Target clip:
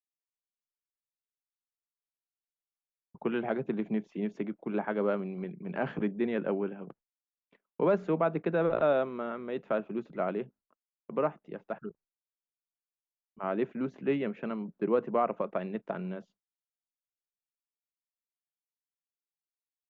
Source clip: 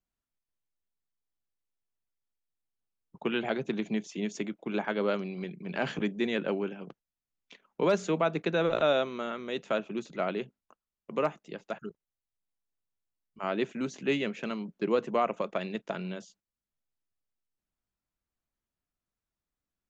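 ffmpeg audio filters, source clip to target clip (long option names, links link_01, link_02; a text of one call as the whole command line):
ffmpeg -i in.wav -af "lowpass=1500,agate=range=-33dB:threshold=-53dB:ratio=3:detection=peak" out.wav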